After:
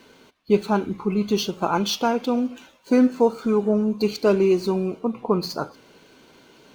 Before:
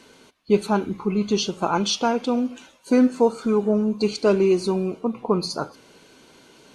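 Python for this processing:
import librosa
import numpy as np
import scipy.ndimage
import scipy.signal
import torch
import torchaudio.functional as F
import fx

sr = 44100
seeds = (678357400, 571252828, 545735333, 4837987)

y = scipy.signal.medfilt(x, 5)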